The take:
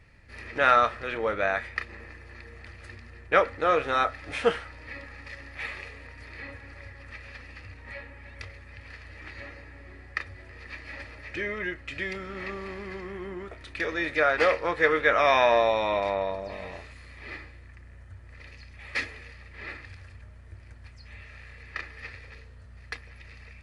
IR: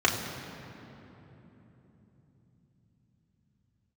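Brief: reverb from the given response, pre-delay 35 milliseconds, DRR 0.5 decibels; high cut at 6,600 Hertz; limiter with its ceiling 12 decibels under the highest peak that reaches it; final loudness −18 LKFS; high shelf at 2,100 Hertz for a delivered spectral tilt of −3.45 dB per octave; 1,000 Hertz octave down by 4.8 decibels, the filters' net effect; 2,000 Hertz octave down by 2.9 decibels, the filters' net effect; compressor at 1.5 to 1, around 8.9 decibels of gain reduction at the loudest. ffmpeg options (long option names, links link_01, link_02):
-filter_complex "[0:a]lowpass=6600,equalizer=frequency=1000:width_type=o:gain=-7,equalizer=frequency=2000:width_type=o:gain=-4,highshelf=frequency=2100:gain=5,acompressor=threshold=-44dB:ratio=1.5,alimiter=level_in=6.5dB:limit=-24dB:level=0:latency=1,volume=-6.5dB,asplit=2[link_01][link_02];[1:a]atrim=start_sample=2205,adelay=35[link_03];[link_02][link_03]afir=irnorm=-1:irlink=0,volume=-15.5dB[link_04];[link_01][link_04]amix=inputs=2:normalize=0,volume=23dB"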